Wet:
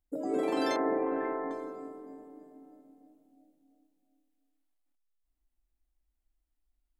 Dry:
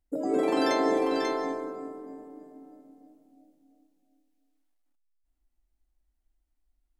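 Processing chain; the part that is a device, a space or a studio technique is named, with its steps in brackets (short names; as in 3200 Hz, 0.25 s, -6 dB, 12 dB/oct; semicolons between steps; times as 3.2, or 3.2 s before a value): 0.76–1.51 steep low-pass 2000 Hz 36 dB/oct; exciter from parts (in parallel at -11 dB: HPF 2100 Hz 12 dB/oct + soft clip -36 dBFS, distortion -11 dB + HPF 4300 Hz 24 dB/oct); on the sum: gain -4.5 dB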